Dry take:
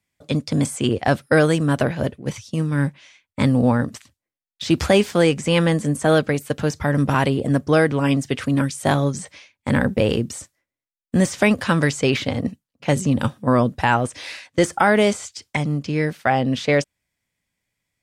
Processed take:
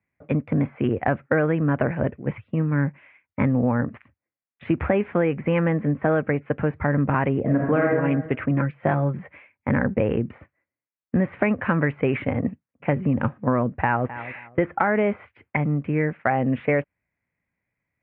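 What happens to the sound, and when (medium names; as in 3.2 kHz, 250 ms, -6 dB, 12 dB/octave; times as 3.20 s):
7.41–7.88 s: reverb throw, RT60 0.9 s, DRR -2 dB
8.50–9.18 s: comb 5.8 ms, depth 49%
13.71–14.13 s: echo throw 260 ms, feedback 25%, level -17.5 dB
whole clip: steep low-pass 2.4 kHz 48 dB/octave; compression, threshold -17 dBFS; high-pass 48 Hz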